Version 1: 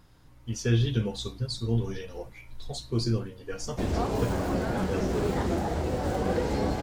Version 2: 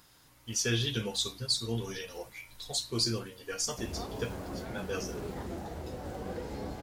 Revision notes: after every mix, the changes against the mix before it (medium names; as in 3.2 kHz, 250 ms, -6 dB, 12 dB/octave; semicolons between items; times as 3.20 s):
speech: add tilt EQ +3 dB/octave; background -11.5 dB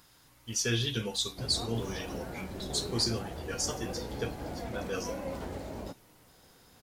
background: entry -2.40 s